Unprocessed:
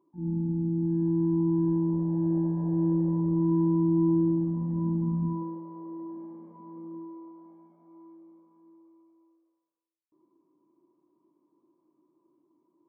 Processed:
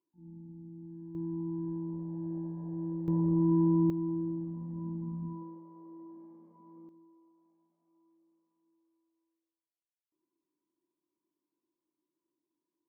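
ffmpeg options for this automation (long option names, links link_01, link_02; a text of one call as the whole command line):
ffmpeg -i in.wav -af "asetnsamples=nb_out_samples=441:pad=0,asendcmd='1.15 volume volume -11dB;3.08 volume volume -1.5dB;3.9 volume volume -10dB;6.89 volume volume -19dB',volume=-19.5dB" out.wav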